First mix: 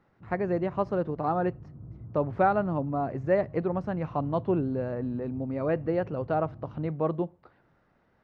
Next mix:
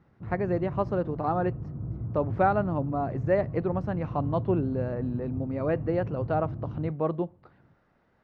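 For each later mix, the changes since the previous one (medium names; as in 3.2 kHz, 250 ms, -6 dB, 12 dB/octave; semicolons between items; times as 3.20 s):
background +9.5 dB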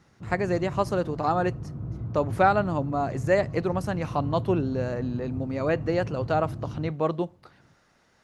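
master: remove tape spacing loss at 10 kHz 40 dB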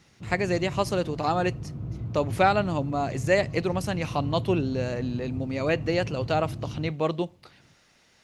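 master: add resonant high shelf 1.9 kHz +6.5 dB, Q 1.5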